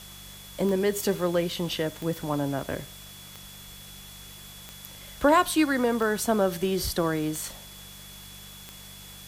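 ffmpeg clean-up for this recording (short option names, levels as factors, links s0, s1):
-af "adeclick=t=4,bandreject=f=48.9:t=h:w=4,bandreject=f=97.8:t=h:w=4,bandreject=f=146.7:t=h:w=4,bandreject=f=195.6:t=h:w=4,bandreject=f=3400:w=30,afwtdn=0.005"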